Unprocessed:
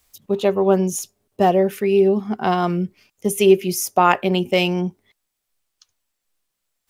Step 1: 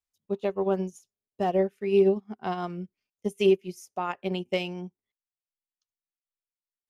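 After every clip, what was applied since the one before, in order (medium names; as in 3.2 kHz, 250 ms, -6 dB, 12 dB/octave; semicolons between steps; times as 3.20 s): low-pass 10 kHz 12 dB/octave; peak limiter -8.5 dBFS, peak gain reduction 6 dB; upward expansion 2.5:1, over -31 dBFS; trim -3 dB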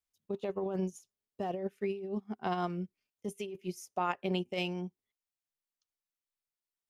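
compressor with a negative ratio -29 dBFS, ratio -1; trim -5 dB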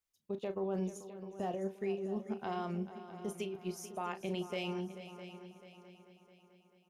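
peak limiter -28.5 dBFS, peak gain reduction 8 dB; doubling 36 ms -11 dB; multi-head delay 219 ms, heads second and third, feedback 48%, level -13.5 dB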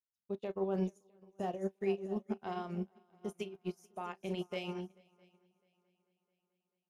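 upward expansion 2.5:1, over -50 dBFS; trim +4.5 dB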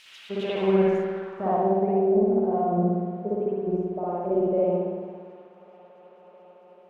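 zero-crossing glitches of -34.5 dBFS; reverberation RT60 1.5 s, pre-delay 57 ms, DRR -7.5 dB; low-pass sweep 2.9 kHz -> 580 Hz, 0.57–2.20 s; trim +4.5 dB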